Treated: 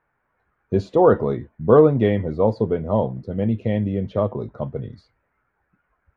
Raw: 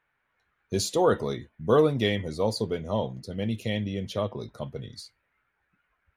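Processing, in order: low-pass 1.2 kHz 12 dB/octave; trim +8 dB

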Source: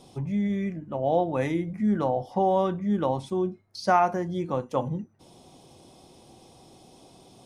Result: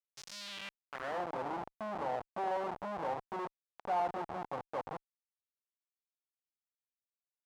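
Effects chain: Schmitt trigger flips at -27.5 dBFS; band-pass sweep 5.6 kHz -> 830 Hz, 0.29–1.24 s; trim +1 dB

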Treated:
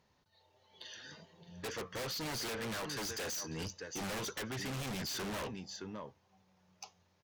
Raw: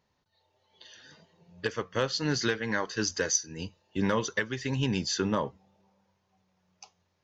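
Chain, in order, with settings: delay 618 ms -17.5 dB; wavefolder -26.5 dBFS; Chebyshev shaper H 5 -7 dB, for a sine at -26.5 dBFS; trim -8 dB

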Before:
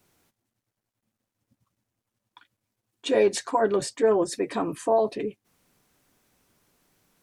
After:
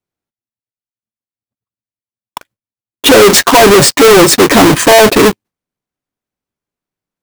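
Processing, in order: square wave that keeps the level; gate with hold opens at -49 dBFS; waveshaping leveller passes 5; trim +7 dB

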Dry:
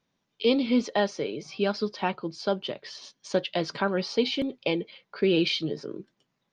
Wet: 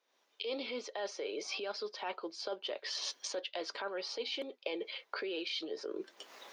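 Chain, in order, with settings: recorder AGC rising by 55 dB/s; high-pass 400 Hz 24 dB/octave; reverse; compression 6:1, threshold -34 dBFS, peak gain reduction 17 dB; reverse; trim -2.5 dB

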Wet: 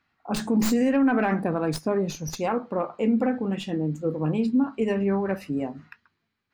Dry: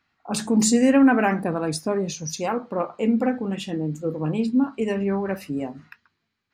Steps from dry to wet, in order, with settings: tracing distortion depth 0.086 ms; treble shelf 4.5 kHz -7.5 dB; peak limiter -14.5 dBFS, peak gain reduction 6 dB

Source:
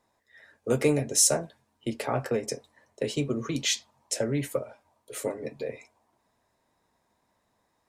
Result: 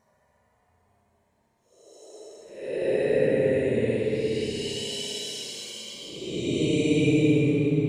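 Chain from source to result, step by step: Paulstretch 23×, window 0.05 s, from 2.89 s; spring tank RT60 1.8 s, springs 59 ms, chirp 55 ms, DRR 0 dB

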